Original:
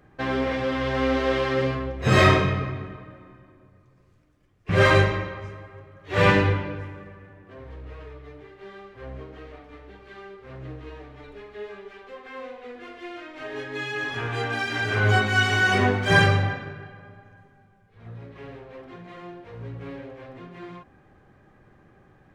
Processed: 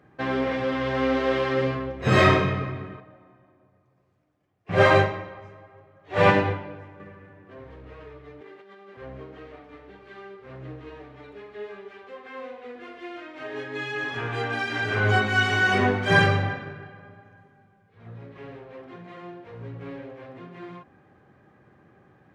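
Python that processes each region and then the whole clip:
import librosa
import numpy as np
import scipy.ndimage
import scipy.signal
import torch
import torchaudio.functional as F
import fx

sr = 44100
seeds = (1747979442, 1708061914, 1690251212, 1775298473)

y = fx.chain(x, sr, fx.highpass(hz=44.0, slope=12),
    fx.peak_eq(hz=730.0, db=9.0, octaves=0.57),
    fx.upward_expand(threshold_db=-27.0, expansion=1.5), at=(3.0, 7.0))
y = fx.chain(y, sr, fx.highpass(hz=180.0, slope=24),
    fx.over_compress(threshold_db=-47.0, ratio=-1.0), at=(8.41, 8.97))
y = scipy.signal.sosfilt(scipy.signal.butter(2, 100.0, 'highpass', fs=sr, output='sos'), y)
y = fx.high_shelf(y, sr, hz=5200.0, db=-7.5)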